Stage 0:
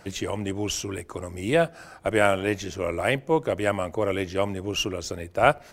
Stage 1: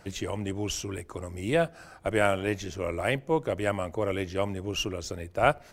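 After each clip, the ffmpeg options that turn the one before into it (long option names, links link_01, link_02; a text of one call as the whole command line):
ffmpeg -i in.wav -af "lowshelf=frequency=96:gain=6,volume=-4dB" out.wav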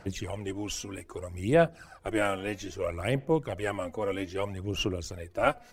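ffmpeg -i in.wav -af "aphaser=in_gain=1:out_gain=1:delay=4.1:decay=0.57:speed=0.62:type=sinusoidal,volume=-4dB" out.wav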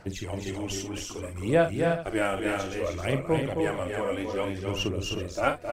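ffmpeg -i in.wav -af "aecho=1:1:45|265|306|383:0.335|0.531|0.562|0.188" out.wav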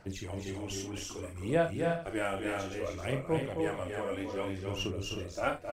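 ffmpeg -i in.wav -filter_complex "[0:a]areverse,acompressor=mode=upward:threshold=-30dB:ratio=2.5,areverse,asplit=2[link_01][link_02];[link_02]adelay=31,volume=-9dB[link_03];[link_01][link_03]amix=inputs=2:normalize=0,volume=-6.5dB" out.wav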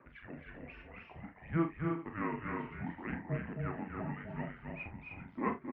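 ffmpeg -i in.wav -af "highpass=frequency=400:width_type=q:width=0.5412,highpass=frequency=400:width_type=q:width=1.307,lowpass=frequency=2600:width_type=q:width=0.5176,lowpass=frequency=2600:width_type=q:width=0.7071,lowpass=frequency=2600:width_type=q:width=1.932,afreqshift=-340,highpass=frequency=110:poles=1,volume=-1.5dB" out.wav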